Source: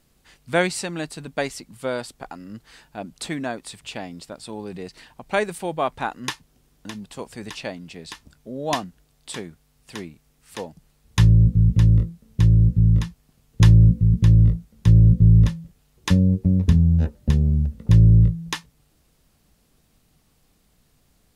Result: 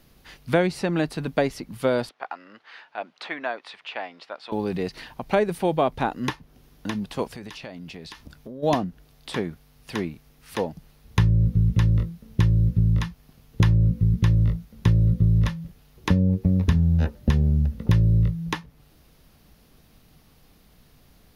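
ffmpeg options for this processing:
ffmpeg -i in.wav -filter_complex "[0:a]asettb=1/sr,asplit=3[link_01][link_02][link_03];[link_01]atrim=end=2.094[link_04];[link_02]atrim=start=2.09:end=4.52,asetpts=PTS-STARTPTS,afade=type=in:duration=0.004:curve=qsin,afade=type=out:start_time=2.426:duration=0.004:curve=qsin,highpass=770,lowpass=2800[link_05];[link_03]atrim=start=4.516[link_06];[link_04][link_05]acrossfade=duration=0.004:curve1=hsin:curve2=qsin[link_07];[link_07][link_06]acrossfade=duration=0.004:curve1=qsin:curve2=hsin,asplit=3[link_08][link_09][link_10];[link_08]afade=type=out:start_time=7.27:duration=0.02[link_11];[link_09]acompressor=threshold=-42dB:ratio=5:attack=3.2:release=140:knee=1:detection=peak,afade=type=in:start_time=7.27:duration=0.02,afade=type=out:start_time=8.62:duration=0.02[link_12];[link_10]afade=type=in:start_time=8.62:duration=0.02[link_13];[link_11][link_12][link_13]amix=inputs=3:normalize=0,equalizer=frequency=7900:width=2.5:gain=-12,acrossover=split=670|2400[link_14][link_15][link_16];[link_14]acompressor=threshold=-25dB:ratio=4[link_17];[link_15]acompressor=threshold=-37dB:ratio=4[link_18];[link_16]acompressor=threshold=-47dB:ratio=4[link_19];[link_17][link_18][link_19]amix=inputs=3:normalize=0,volume=7dB" out.wav

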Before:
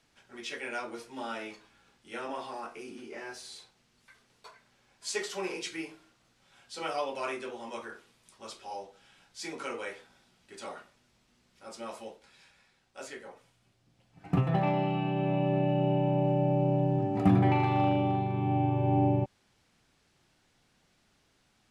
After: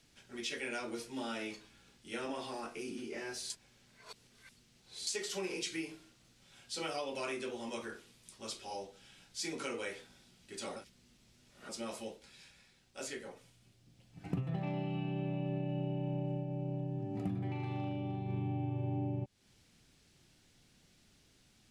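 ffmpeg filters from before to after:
ffmpeg -i in.wav -filter_complex "[0:a]asplit=7[link_01][link_02][link_03][link_04][link_05][link_06][link_07];[link_01]atrim=end=3.502[link_08];[link_02]atrim=start=3.498:end=5.072,asetpts=PTS-STARTPTS,areverse[link_09];[link_03]atrim=start=5.068:end=10.762[link_10];[link_04]atrim=start=10.758:end=11.692,asetpts=PTS-STARTPTS,areverse[link_11];[link_05]atrim=start=11.688:end=16.46,asetpts=PTS-STARTPTS,afade=type=out:start_time=4.652:duration=0.12:silence=0.398107[link_12];[link_06]atrim=start=16.46:end=18.26,asetpts=PTS-STARTPTS,volume=-8dB[link_13];[link_07]atrim=start=18.26,asetpts=PTS-STARTPTS,afade=type=in:duration=0.12:silence=0.398107[link_14];[link_08][link_09]acrossfade=duration=0.004:curve1=hsin:curve2=hsin[link_15];[link_15][link_10]acrossfade=duration=0.004:curve1=hsin:curve2=hsin[link_16];[link_16][link_11]acrossfade=duration=0.004:curve1=hsin:curve2=hsin[link_17];[link_12][link_13][link_14]concat=n=3:v=0:a=1[link_18];[link_17][link_18]acrossfade=duration=0.004:curve1=hsin:curve2=hsin,equalizer=frequency=1000:width=0.59:gain=-10,acompressor=threshold=-40dB:ratio=5,volume=5dB" out.wav

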